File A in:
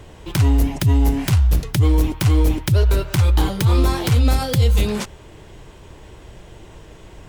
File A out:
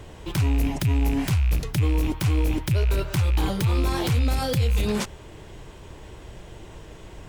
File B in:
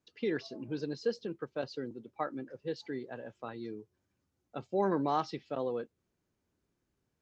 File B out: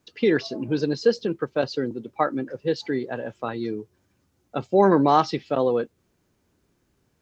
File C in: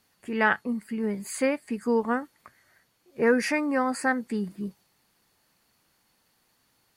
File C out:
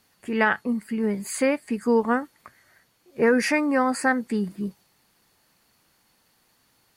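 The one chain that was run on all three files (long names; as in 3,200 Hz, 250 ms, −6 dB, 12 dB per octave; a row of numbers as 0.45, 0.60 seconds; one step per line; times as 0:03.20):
loose part that buzzes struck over −16 dBFS, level −20 dBFS
brickwall limiter −14 dBFS
loudness normalisation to −24 LKFS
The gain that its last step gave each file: −1.0, +13.0, +4.0 decibels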